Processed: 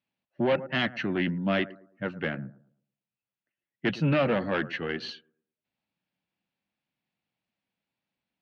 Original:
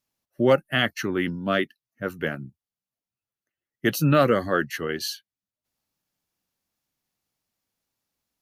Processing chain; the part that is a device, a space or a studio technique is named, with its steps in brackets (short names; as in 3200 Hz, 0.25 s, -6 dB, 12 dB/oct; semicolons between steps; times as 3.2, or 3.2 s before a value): analogue delay pedal into a guitar amplifier (analogue delay 0.11 s, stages 1024, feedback 31%, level -19 dB; tube stage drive 18 dB, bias 0.4; speaker cabinet 80–3700 Hz, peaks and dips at 87 Hz -6 dB, 190 Hz +5 dB, 420 Hz -4 dB, 1200 Hz -5 dB, 2500 Hz +4 dB)